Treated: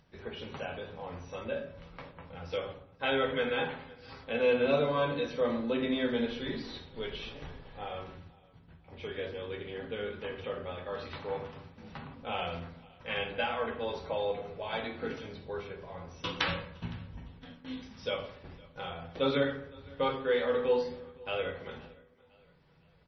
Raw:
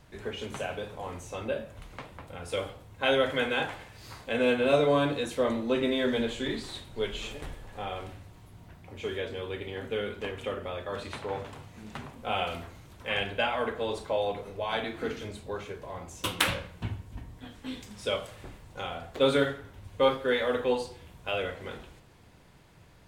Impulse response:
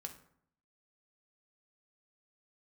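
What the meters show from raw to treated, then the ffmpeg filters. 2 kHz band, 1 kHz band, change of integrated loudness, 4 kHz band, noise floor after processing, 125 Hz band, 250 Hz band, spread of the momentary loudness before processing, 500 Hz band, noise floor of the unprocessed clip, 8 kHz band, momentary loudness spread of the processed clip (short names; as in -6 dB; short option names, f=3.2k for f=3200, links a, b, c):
-4.0 dB, -3.5 dB, -3.5 dB, -5.0 dB, -61 dBFS, -3.5 dB, -3.5 dB, 18 LU, -3.0 dB, -55 dBFS, under -15 dB, 18 LU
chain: -filter_complex "[0:a]agate=range=-27dB:threshold=-47dB:ratio=16:detection=peak,acompressor=mode=upward:threshold=-44dB:ratio=2.5,aecho=1:1:512|1024|1536:0.0668|0.0301|0.0135[a];[1:a]atrim=start_sample=2205[b];[a][b]afir=irnorm=-1:irlink=0" -ar 24000 -c:a libmp3lame -b:a 24k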